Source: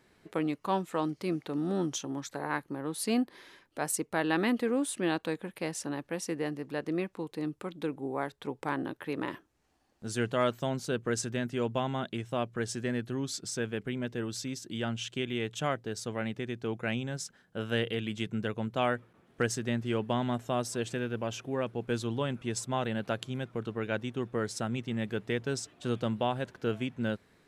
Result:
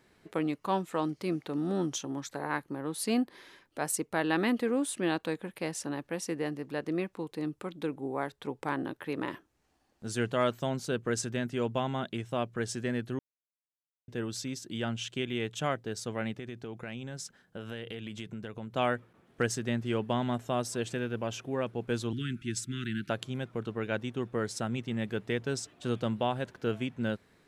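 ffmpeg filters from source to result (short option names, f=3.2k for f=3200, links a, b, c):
-filter_complex "[0:a]asettb=1/sr,asplit=3[a][b][c];[a]atrim=end=16.344[d];[b]atrim=start=16.34:end=18.74,asetpts=PTS-STARTPTS,afade=t=in:d=0.004:c=qsin,afade=t=out:st=2.396:d=0.004:c=qsin,acompressor=threshold=-36dB:ratio=6:attack=3.2:release=140:knee=1:detection=peak[e];[c]atrim=start=18.736[f];[d][e]acrossfade=d=0.004:c1=hsin:c2=qsin[g];[g][f]acrossfade=d=0.004:c1=qsin:c2=hsin,asettb=1/sr,asplit=3[h][i][j];[h]atrim=end=22.134[k];[i]atrim=start=22.13:end=23.1,asetpts=PTS-STARTPTS,afade=t=in:d=0.004:c=qsin,afade=t=out:st=0.966:d=0.004:c=qsin,asuperstop=centerf=710:order=12:qfactor=0.7[l];[j]atrim=start=23.096[m];[k][l]acrossfade=d=0.004:c1=hsin:c2=qsin[n];[n][m]acrossfade=d=0.004:c1=qsin:c2=hsin,asplit=3[o][p][q];[o]atrim=end=13.19,asetpts=PTS-STARTPTS,afade=t=out:st=13.186:d=0.004:c=hsin[r];[p]atrim=start=13.19:end=14.08,asetpts=PTS-STARTPTS,volume=0[s];[q]atrim=start=14.08,asetpts=PTS-STARTPTS,afade=t=in:d=0.004:c=hsin[t];[r][s][t]concat=n=3:v=0:a=1"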